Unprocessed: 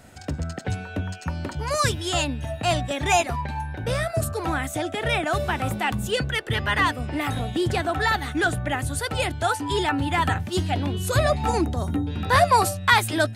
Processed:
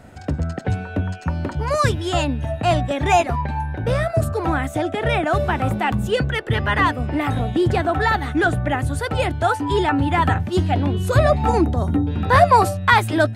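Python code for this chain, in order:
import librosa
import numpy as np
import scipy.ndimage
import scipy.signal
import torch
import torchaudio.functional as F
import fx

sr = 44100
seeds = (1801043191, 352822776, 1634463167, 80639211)

y = fx.high_shelf(x, sr, hz=2600.0, db=-12.0)
y = y * librosa.db_to_amplitude(6.0)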